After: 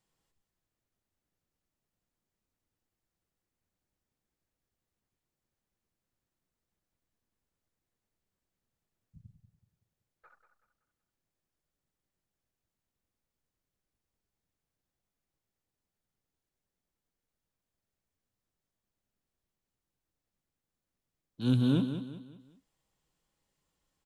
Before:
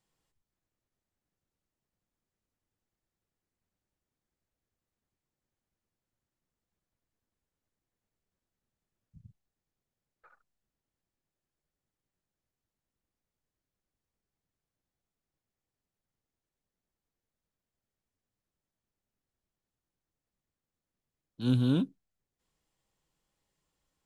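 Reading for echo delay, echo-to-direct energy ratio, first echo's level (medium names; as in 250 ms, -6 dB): 189 ms, -9.0 dB, -9.5 dB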